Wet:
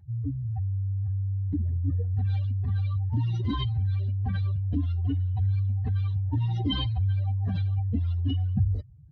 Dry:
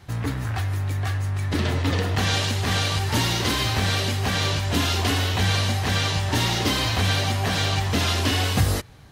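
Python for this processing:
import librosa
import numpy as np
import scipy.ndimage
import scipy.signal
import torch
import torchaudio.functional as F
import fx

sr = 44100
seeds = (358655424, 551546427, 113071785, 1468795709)

y = fx.spec_expand(x, sr, power=3.3)
y = y * librosa.db_to_amplitude(-3.0)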